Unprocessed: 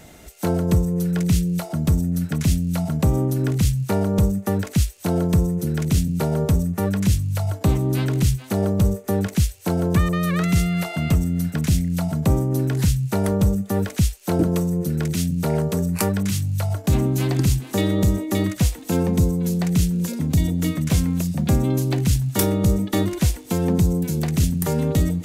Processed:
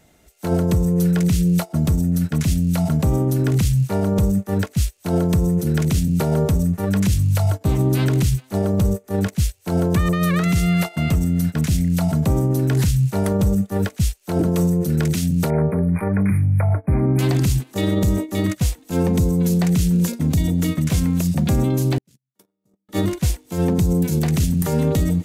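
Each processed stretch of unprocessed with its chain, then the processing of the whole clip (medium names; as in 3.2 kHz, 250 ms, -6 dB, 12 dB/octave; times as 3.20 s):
15.50–17.19 s: brick-wall FIR band-stop 2.5–9.1 kHz + distance through air 78 m
21.98–22.89 s: gate -14 dBFS, range -53 dB + high-pass 150 Hz 24 dB/octave + compressor with a negative ratio -47 dBFS
whole clip: peak limiter -17.5 dBFS; gate -26 dBFS, range -17 dB; trim +6.5 dB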